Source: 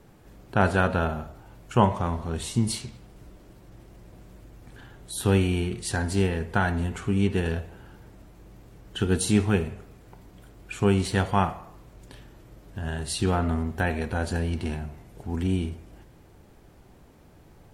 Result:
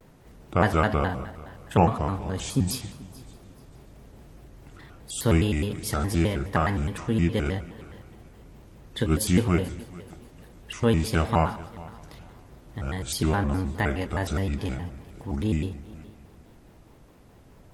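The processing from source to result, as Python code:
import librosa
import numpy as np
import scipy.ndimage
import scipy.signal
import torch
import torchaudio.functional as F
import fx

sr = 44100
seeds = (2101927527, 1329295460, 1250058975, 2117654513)

y = fx.echo_heads(x, sr, ms=146, heads='first and third', feedback_pct=45, wet_db=-21.0)
y = fx.vibrato_shape(y, sr, shape='square', rate_hz=4.8, depth_cents=250.0)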